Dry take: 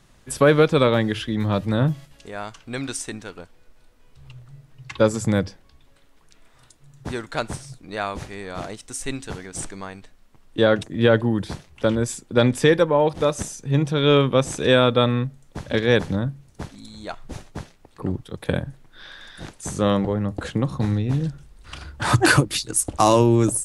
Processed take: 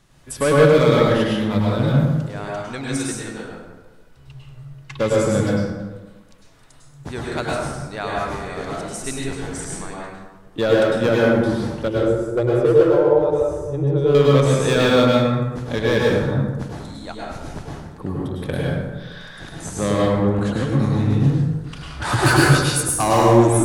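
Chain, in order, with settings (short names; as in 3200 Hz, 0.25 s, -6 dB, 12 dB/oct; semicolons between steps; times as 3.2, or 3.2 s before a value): 11.88–14.15 EQ curve 110 Hz 0 dB, 240 Hz -21 dB, 350 Hz +5 dB, 2100 Hz -18 dB; hard clip -12 dBFS, distortion -13 dB; plate-style reverb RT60 1.3 s, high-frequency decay 0.5×, pre-delay 90 ms, DRR -4.5 dB; gain -2 dB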